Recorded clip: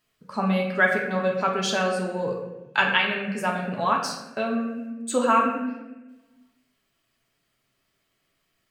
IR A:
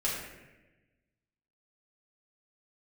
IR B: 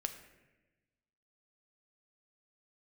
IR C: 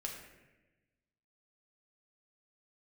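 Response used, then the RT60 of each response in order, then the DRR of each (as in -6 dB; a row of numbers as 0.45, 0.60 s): C; 1.1, 1.1, 1.1 s; -8.0, 6.5, -1.0 dB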